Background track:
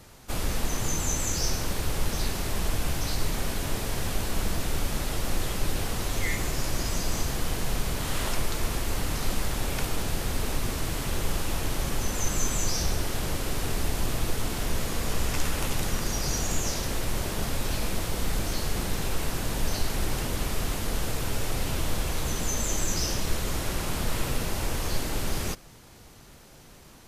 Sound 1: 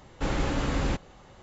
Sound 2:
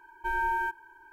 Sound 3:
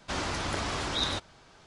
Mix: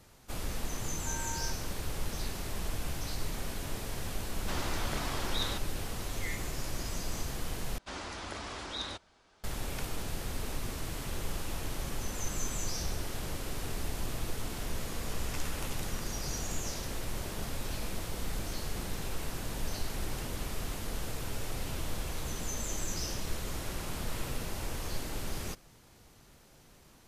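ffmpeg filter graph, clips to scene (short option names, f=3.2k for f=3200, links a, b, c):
-filter_complex "[3:a]asplit=2[a][b];[0:a]volume=-8dB[c];[b]equalizer=f=130:t=o:w=0.44:g=-12.5[d];[c]asplit=2[e][f];[e]atrim=end=7.784[g];[d]atrim=end=1.66,asetpts=PTS-STARTPTS,volume=-8.5dB[h];[f]atrim=start=9.436[i];[2:a]atrim=end=1.12,asetpts=PTS-STARTPTS,volume=-14.5dB,afade=t=in:d=0.004:c=hsin,afade=t=out:st=1.116:d=0.004:c=hsin,adelay=810[j];[a]atrim=end=1.66,asetpts=PTS-STARTPTS,volume=-5.5dB,afade=t=in:d=0.004:c=hsin,afade=t=out:st=1.656:d=0.004:c=hsin,adelay=4390[k];[g][h]acrossfade=d=0.004:c1=hsin:c2=hsin[l];[l][i]acrossfade=d=0.004:c1=hsin:c2=hsin[m];[m][j][k]amix=inputs=3:normalize=0"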